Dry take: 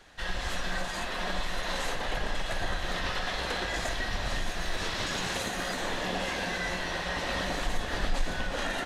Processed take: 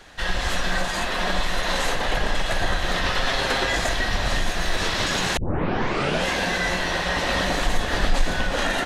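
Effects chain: 3.18–3.75 s: comb 7.5 ms, depth 50%; 5.37 s: tape start 0.89 s; trim +8.5 dB

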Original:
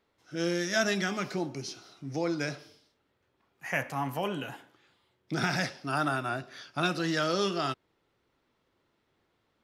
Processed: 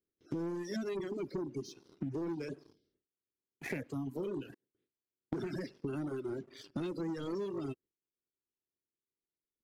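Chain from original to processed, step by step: coarse spectral quantiser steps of 30 dB; 4.54–5.33 s: slow attack 662 ms; gate with hold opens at -59 dBFS; resonant low shelf 560 Hz +13 dB, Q 3; waveshaping leveller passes 2; reverb removal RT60 1.5 s; compression 8:1, threshold -33 dBFS, peak gain reduction 22.5 dB; trim -4 dB

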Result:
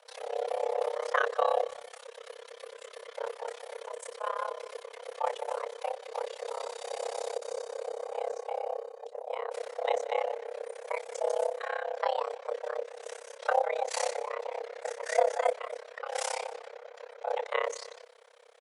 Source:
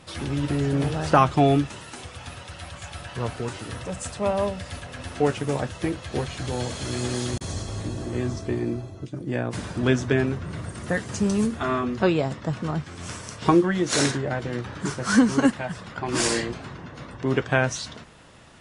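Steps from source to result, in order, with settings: octave divider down 2 oct, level +3 dB; frequency shift +440 Hz; speakerphone echo 280 ms, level -23 dB; AM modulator 33 Hz, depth 95%; on a send: delay 180 ms -19.5 dB; on the sum: trim -7.5 dB

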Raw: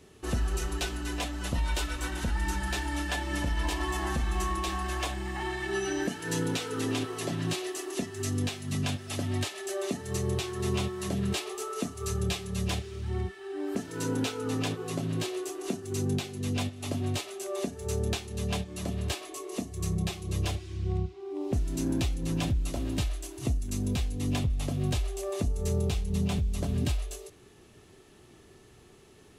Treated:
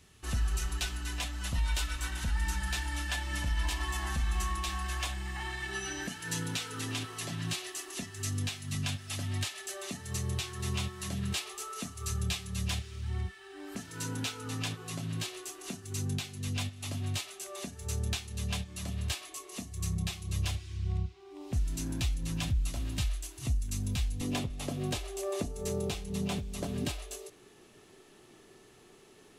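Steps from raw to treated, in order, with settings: peaking EQ 410 Hz -13.5 dB 2 oct, from 24.21 s 63 Hz

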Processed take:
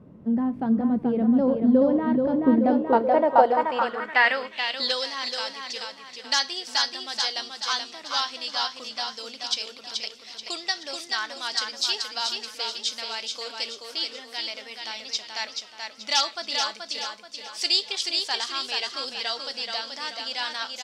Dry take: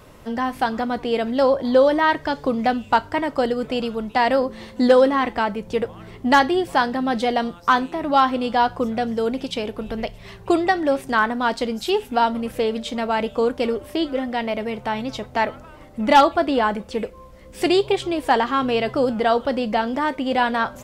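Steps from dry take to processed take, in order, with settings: feedback delay 430 ms, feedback 43%, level -4.5 dB; band-pass sweep 200 Hz -> 5.1 kHz, 2.28–5.09 s; dynamic bell 5.6 kHz, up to +6 dB, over -52 dBFS, Q 1.2; trim +7 dB

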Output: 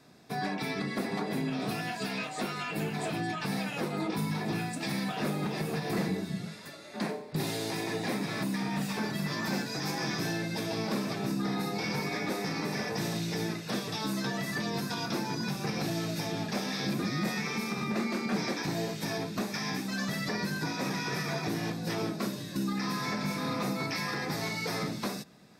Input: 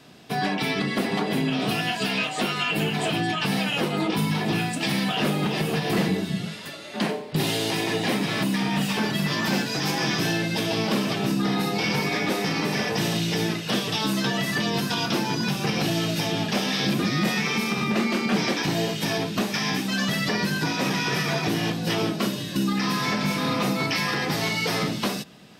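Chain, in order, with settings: peaking EQ 3 kHz -14.5 dB 0.25 oct; trim -7.5 dB

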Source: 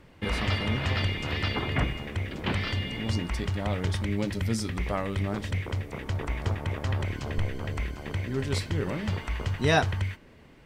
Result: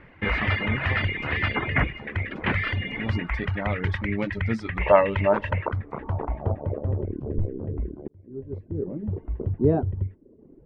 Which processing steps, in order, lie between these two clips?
4.81–5.69 s: small resonant body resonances 600/900/2700 Hz, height 16 dB, ringing for 25 ms; reverb removal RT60 0.78 s; low-pass sweep 2 kHz -> 380 Hz, 5.26–7.15 s; 8.08–9.44 s: fade in; trim +3 dB

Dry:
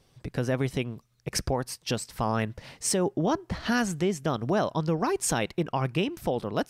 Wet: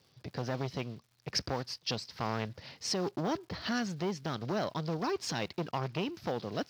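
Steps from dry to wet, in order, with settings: block-companded coder 5-bit; high-pass 76 Hz 24 dB/octave; resonant high shelf 6.6 kHz -11.5 dB, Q 3; crackle 200 per s -50 dBFS; transformer saturation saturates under 930 Hz; trim -5 dB

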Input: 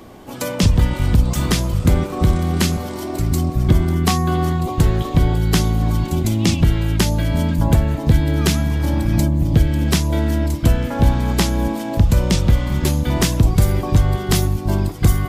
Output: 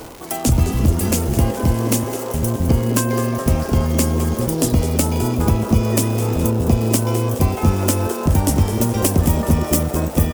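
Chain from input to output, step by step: gliding tape speed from 133% -> 163%; fifteen-band graphic EQ 160 Hz -5 dB, 400 Hz -3 dB, 1.6 kHz -8 dB, 4 kHz -9 dB; reverse; upward compressor, threshold -23 dBFS; reverse; treble shelf 5.5 kHz +5.5 dB; on a send: frequency-shifting echo 210 ms, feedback 57%, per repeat +140 Hz, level -11.5 dB; on the sum: crackle 310 per s -26 dBFS

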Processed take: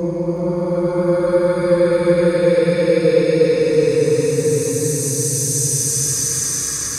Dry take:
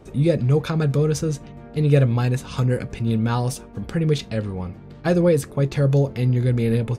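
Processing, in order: graphic EQ with 31 bands 160 Hz -3 dB, 1 kHz +4 dB, 3.15 kHz -9 dB, 6.3 kHz +11 dB; slow attack 252 ms; peaking EQ 7.2 kHz +9 dB 2.8 oct; Paulstretch 31×, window 0.10 s, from 5.22 s; on a send: thinning echo 370 ms, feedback 64%, high-pass 200 Hz, level -7 dB

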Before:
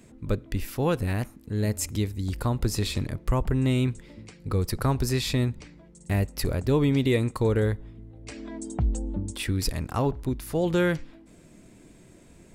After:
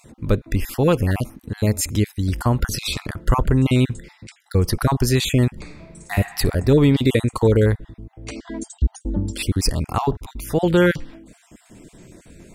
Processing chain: random holes in the spectrogram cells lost 29%; 2.58–3.46 s: peaking EQ 1.4 kHz +8.5 dB 0.45 oct; 5.52–6.15 s: reverb throw, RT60 1.6 s, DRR 2 dB; trim +8 dB

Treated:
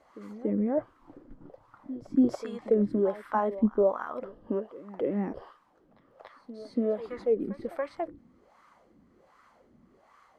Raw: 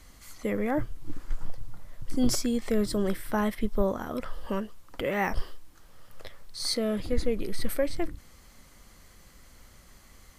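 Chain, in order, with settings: wah-wah 1.3 Hz 230–1200 Hz, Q 3.3; pre-echo 284 ms -16 dB; trim +8 dB

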